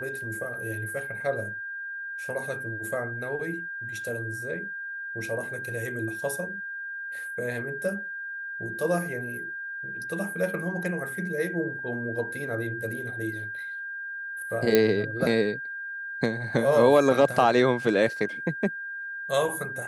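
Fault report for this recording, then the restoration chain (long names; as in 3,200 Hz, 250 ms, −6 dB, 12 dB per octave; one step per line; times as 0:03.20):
whistle 1,600 Hz −33 dBFS
0:14.75: click −6 dBFS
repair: click removal
notch filter 1,600 Hz, Q 30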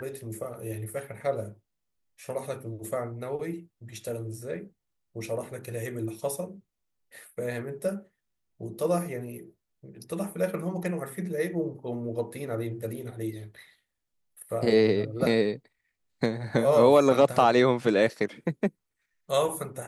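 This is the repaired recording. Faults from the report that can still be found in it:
none of them is left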